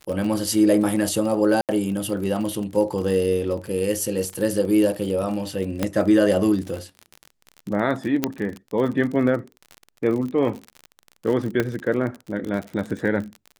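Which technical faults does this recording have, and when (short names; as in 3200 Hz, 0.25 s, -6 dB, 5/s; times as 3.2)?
crackle 41/s -28 dBFS
1.61–1.69 gap 78 ms
5.83 pop -8 dBFS
8.24 pop -5 dBFS
11.6 pop -9 dBFS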